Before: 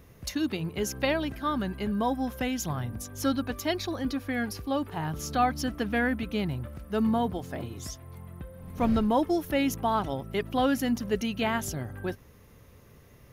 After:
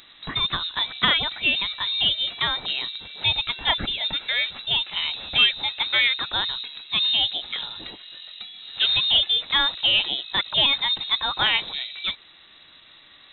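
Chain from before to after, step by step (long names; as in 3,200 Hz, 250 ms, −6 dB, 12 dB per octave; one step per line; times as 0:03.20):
in parallel at −10 dB: soft clipping −28 dBFS, distortion −9 dB
on the sum: spectral tilt +2.5 dB per octave
voice inversion scrambler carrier 3,900 Hz
level +6 dB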